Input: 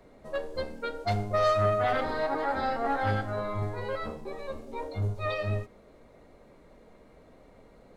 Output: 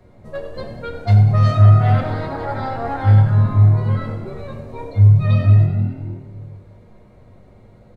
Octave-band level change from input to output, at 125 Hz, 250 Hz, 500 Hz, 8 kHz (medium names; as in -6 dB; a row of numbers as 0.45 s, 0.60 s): +22.5 dB, +12.0 dB, +1.0 dB, no reading